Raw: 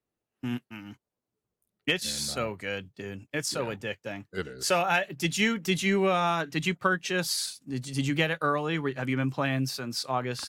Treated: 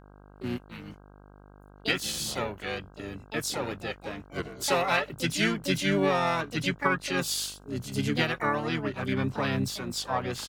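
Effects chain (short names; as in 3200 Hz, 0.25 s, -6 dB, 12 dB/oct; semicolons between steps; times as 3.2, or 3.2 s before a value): harmoniser -5 st -5 dB, +7 st -6 dB; buzz 50 Hz, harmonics 32, -50 dBFS -4 dB/oct; gain -2.5 dB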